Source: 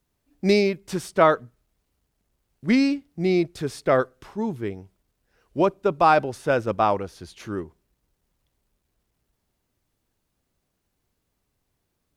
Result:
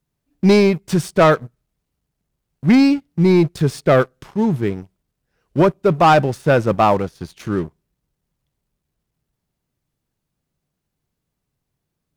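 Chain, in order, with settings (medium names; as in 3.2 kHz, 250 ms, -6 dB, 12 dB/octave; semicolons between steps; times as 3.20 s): peaking EQ 150 Hz +9 dB 0.7 oct; waveshaping leveller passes 2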